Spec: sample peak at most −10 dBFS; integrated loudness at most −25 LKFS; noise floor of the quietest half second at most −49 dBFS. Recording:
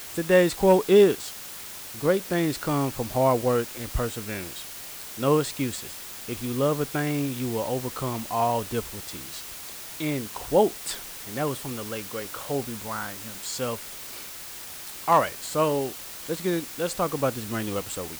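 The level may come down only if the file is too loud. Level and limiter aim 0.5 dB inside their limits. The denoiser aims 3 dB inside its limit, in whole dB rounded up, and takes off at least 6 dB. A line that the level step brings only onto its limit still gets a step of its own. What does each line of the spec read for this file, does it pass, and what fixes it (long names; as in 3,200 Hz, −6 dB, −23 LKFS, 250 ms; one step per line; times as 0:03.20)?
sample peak −8.5 dBFS: out of spec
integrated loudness −26.5 LKFS: in spec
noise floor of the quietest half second −40 dBFS: out of spec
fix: broadband denoise 12 dB, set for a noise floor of −40 dBFS
brickwall limiter −10.5 dBFS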